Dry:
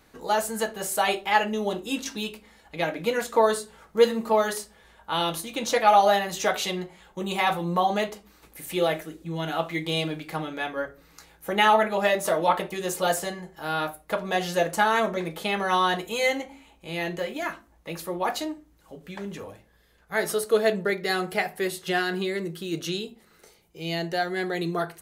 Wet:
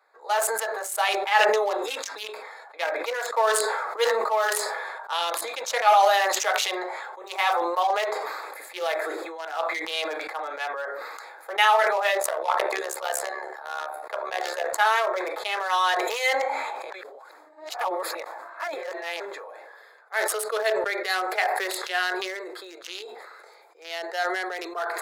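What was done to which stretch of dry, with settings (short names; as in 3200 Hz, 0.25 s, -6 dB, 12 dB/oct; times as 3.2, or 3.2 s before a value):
12.2–14.78 AM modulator 70 Hz, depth 65%
16.9–19.2 reverse
whole clip: Wiener smoothing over 15 samples; Bessel high-pass 840 Hz, order 8; sustainer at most 27 dB/s; gain +2.5 dB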